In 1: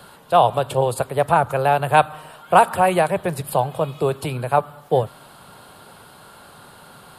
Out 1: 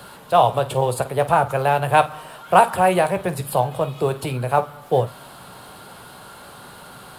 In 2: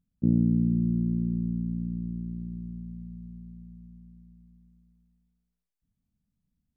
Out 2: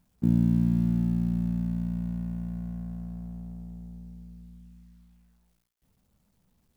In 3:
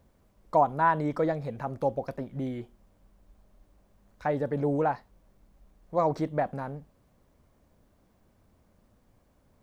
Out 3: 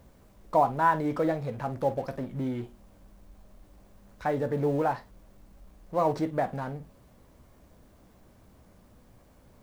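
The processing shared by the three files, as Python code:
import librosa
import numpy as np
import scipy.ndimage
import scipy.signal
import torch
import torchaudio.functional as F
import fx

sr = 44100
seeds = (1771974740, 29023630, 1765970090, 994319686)

y = fx.law_mismatch(x, sr, coded='mu')
y = fx.room_early_taps(y, sr, ms=(16, 50), db=(-11.0, -14.5))
y = y * 10.0 ** (-1.0 / 20.0)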